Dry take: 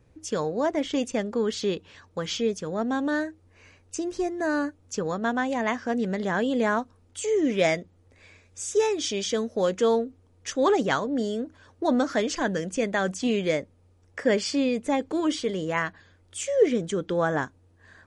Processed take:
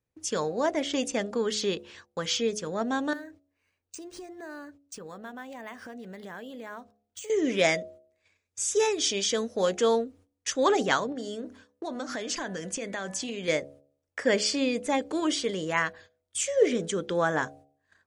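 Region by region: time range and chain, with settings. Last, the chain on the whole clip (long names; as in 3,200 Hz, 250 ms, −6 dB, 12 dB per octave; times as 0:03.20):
0:03.13–0:07.30: downward compressor 4 to 1, threshold −39 dBFS + linearly interpolated sample-rate reduction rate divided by 3×
0:11.12–0:13.48: hum removal 247.4 Hz, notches 9 + downward compressor, threshold −29 dBFS
whole clip: noise gate −49 dBFS, range −22 dB; spectral tilt +1.5 dB per octave; hum removal 70.62 Hz, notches 11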